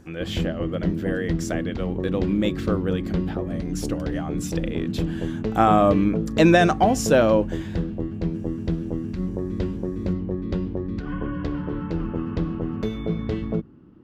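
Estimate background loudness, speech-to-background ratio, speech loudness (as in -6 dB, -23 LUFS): -28.0 LUFS, 4.5 dB, -23.5 LUFS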